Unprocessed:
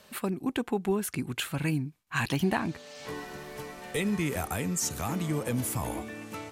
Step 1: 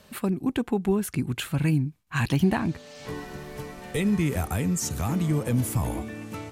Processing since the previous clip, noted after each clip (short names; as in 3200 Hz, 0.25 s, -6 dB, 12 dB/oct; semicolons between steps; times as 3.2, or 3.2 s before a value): low shelf 230 Hz +10.5 dB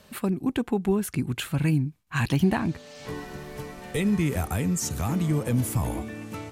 nothing audible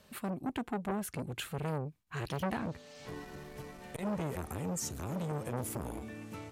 core saturation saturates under 1000 Hz; gain -7.5 dB